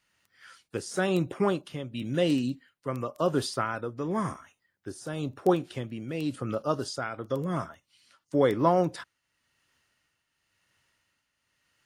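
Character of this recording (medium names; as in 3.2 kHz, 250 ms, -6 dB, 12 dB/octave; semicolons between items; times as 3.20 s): tremolo triangle 0.95 Hz, depth 65%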